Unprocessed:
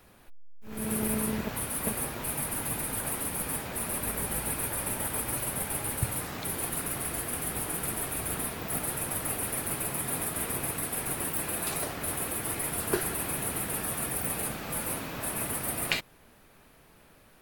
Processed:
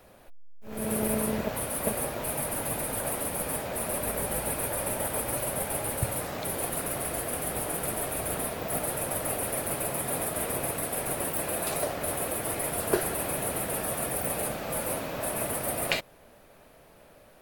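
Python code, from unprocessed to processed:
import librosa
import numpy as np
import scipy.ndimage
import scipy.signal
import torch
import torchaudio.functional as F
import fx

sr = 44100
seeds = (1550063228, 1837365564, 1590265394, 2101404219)

y = fx.peak_eq(x, sr, hz=590.0, db=10.0, octaves=0.75)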